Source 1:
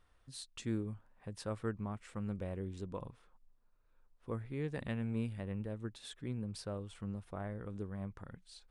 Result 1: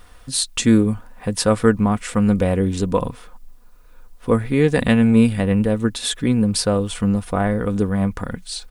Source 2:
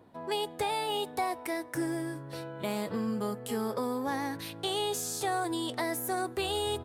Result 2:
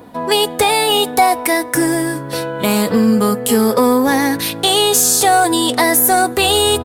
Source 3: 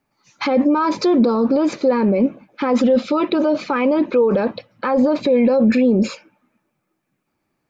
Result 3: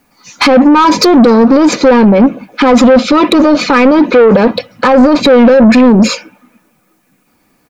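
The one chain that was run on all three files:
high-shelf EQ 5,800 Hz +7.5 dB
comb filter 4.1 ms, depth 39%
in parallel at 0 dB: downward compressor, threshold −21 dBFS
on the sum: soft clipping −12 dBFS
normalise the peak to −1.5 dBFS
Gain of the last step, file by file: +16.5, +12.0, +10.5 decibels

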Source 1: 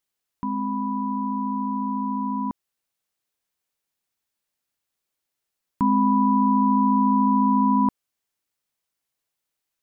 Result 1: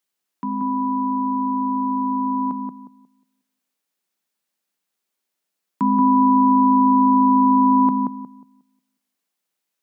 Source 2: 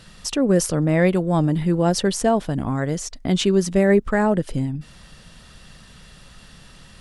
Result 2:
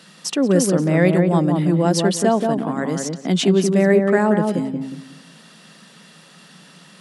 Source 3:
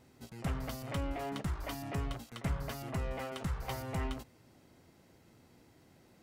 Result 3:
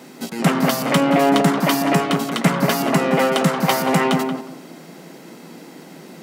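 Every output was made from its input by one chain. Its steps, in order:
Chebyshev high-pass filter 160 Hz, order 5
on a send: feedback echo with a low-pass in the loop 180 ms, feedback 28%, low-pass 1,200 Hz, level −3 dB
on the sum: loudness normalisation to −18 LKFS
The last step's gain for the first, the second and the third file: +2.0, +1.5, +22.5 decibels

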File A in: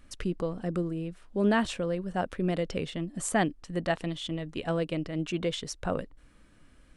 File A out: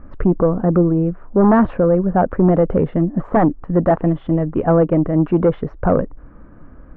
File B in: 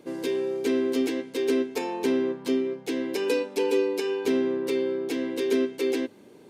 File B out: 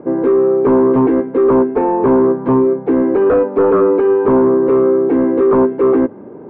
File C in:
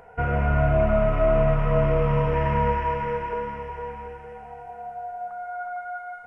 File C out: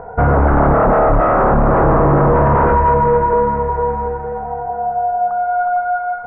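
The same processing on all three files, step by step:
sine wavefolder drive 12 dB, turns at −9 dBFS
low-pass filter 1,300 Hz 24 dB per octave
normalise the peak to −6 dBFS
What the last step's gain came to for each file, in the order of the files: +2.0, +1.5, +1.5 decibels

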